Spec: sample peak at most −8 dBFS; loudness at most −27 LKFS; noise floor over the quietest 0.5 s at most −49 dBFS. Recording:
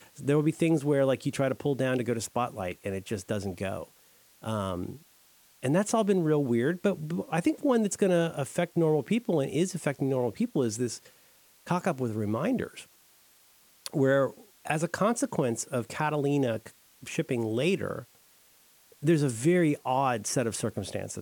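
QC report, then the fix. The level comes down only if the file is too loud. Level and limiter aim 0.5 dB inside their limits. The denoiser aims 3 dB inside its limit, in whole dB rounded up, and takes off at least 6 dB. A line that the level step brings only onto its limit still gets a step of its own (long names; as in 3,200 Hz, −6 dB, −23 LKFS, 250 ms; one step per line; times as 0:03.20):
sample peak −11.0 dBFS: in spec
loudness −28.5 LKFS: in spec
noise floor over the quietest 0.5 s −61 dBFS: in spec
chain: no processing needed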